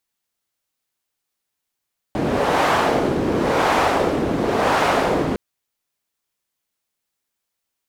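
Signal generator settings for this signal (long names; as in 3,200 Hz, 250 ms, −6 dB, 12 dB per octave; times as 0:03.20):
wind from filtered noise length 3.21 s, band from 310 Hz, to 890 Hz, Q 1.1, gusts 3, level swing 3.5 dB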